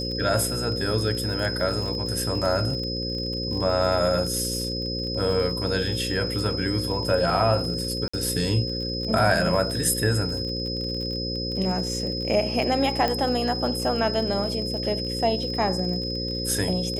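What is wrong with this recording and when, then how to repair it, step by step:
mains buzz 60 Hz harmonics 9 −31 dBFS
surface crackle 41 per second −31 dBFS
whistle 5,100 Hz −30 dBFS
0:08.08–0:08.13: drop-out 55 ms
0:13.08: click −12 dBFS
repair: click removal
hum removal 60 Hz, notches 9
notch filter 5,100 Hz, Q 30
repair the gap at 0:08.08, 55 ms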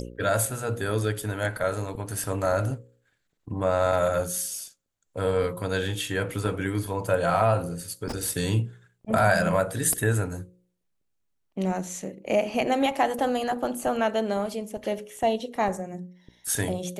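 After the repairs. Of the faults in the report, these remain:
none of them is left

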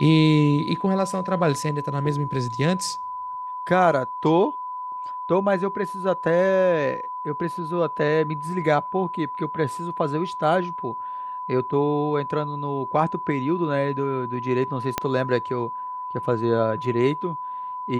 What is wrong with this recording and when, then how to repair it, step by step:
whistle 1,000 Hz −29 dBFS
0:14.98: click −7 dBFS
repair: click removal
notch filter 1,000 Hz, Q 30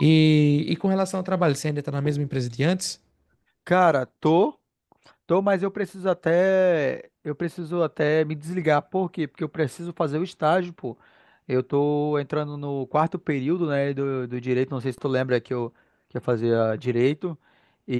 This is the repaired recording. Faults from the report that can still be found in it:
0:14.98: click

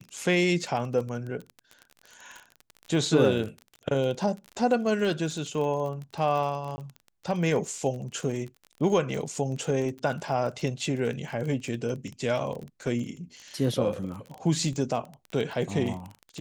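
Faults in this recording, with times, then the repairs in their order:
surface crackle 28 per second −33 dBFS
0:06.76–0:06.78: drop-out 20 ms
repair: click removal
repair the gap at 0:06.76, 20 ms

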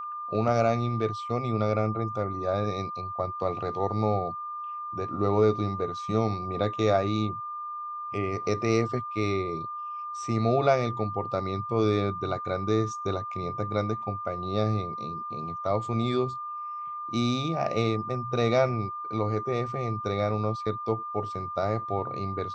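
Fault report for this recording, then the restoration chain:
whistle 1,200 Hz −33 dBFS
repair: notch filter 1,200 Hz, Q 30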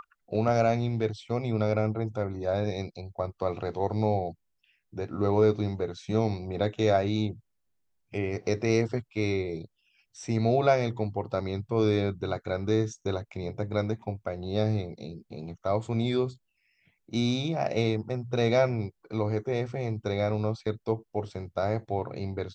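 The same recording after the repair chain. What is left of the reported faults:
none of them is left

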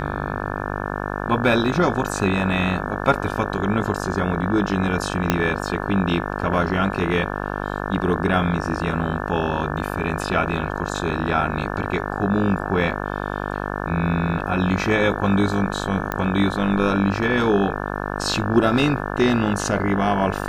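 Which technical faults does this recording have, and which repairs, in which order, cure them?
mains buzz 50 Hz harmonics 35 −27 dBFS
0:05.30: click −2 dBFS
0:16.12: click −10 dBFS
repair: click removal
hum removal 50 Hz, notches 35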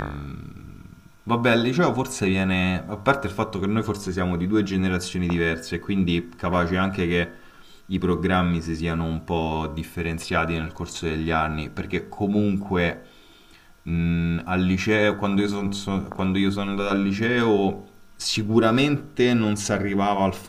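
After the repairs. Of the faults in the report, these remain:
0:05.30: click

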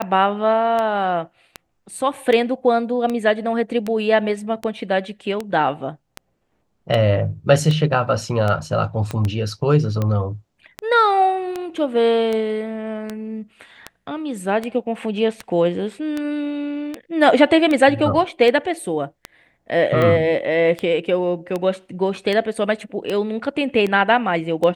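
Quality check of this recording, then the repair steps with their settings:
scratch tick 78 rpm −11 dBFS
0:09.11: click −12 dBFS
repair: click removal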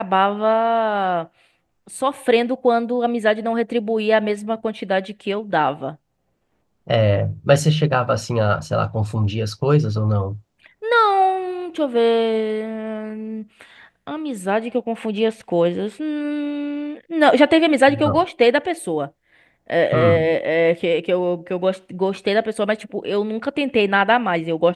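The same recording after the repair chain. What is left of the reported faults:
0:09.11: click

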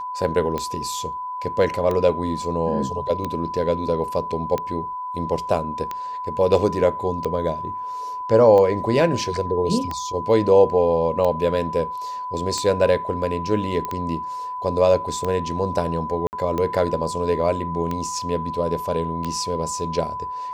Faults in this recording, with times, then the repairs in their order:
scratch tick 45 rpm −13 dBFS
whistle 1,000 Hz −27 dBFS
0:13.85: click −14 dBFS
0:16.27–0:16.33: drop-out 59 ms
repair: click removal
notch filter 1,000 Hz, Q 30
repair the gap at 0:16.27, 59 ms

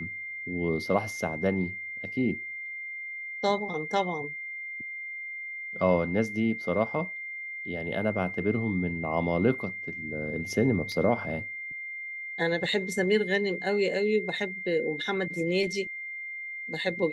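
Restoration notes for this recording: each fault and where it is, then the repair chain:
whistle 2,100 Hz −35 dBFS
0:10.92: drop-out 2.2 ms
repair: notch filter 2,100 Hz, Q 30
repair the gap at 0:10.92, 2.2 ms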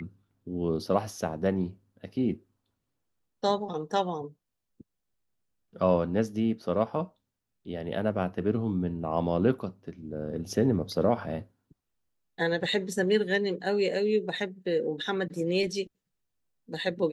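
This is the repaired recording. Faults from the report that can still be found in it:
none of them is left

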